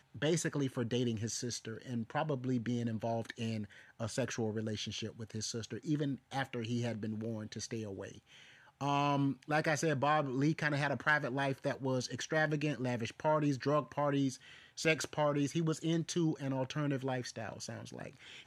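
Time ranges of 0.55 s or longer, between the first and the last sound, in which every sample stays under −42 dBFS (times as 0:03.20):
0:08.12–0:08.81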